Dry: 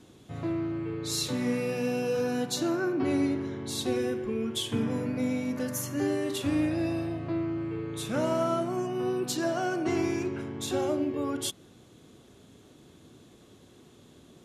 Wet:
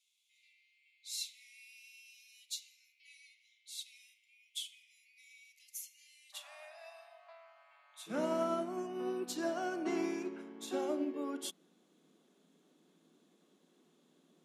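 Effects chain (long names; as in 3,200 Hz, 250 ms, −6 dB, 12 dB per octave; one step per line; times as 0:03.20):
Chebyshev high-pass filter 2,100 Hz, order 8, from 0:06.32 610 Hz, from 0:08.06 160 Hz
expander for the loud parts 1.5 to 1, over −42 dBFS
level −5.5 dB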